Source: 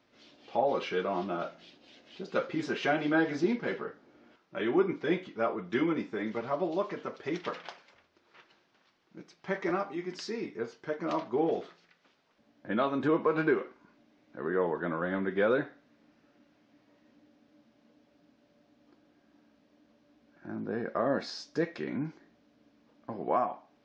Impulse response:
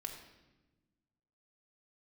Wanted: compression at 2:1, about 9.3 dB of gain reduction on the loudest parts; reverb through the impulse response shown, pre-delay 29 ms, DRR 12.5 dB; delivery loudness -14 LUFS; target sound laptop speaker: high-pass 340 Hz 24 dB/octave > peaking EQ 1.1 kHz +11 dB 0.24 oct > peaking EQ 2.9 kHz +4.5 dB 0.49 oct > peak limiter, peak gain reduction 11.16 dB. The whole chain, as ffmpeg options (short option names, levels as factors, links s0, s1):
-filter_complex "[0:a]acompressor=threshold=0.0112:ratio=2,asplit=2[s0][s1];[1:a]atrim=start_sample=2205,adelay=29[s2];[s1][s2]afir=irnorm=-1:irlink=0,volume=0.299[s3];[s0][s3]amix=inputs=2:normalize=0,highpass=f=340:w=0.5412,highpass=f=340:w=1.3066,equalizer=f=1100:t=o:w=0.24:g=11,equalizer=f=2900:t=o:w=0.49:g=4.5,volume=26.6,alimiter=limit=0.708:level=0:latency=1"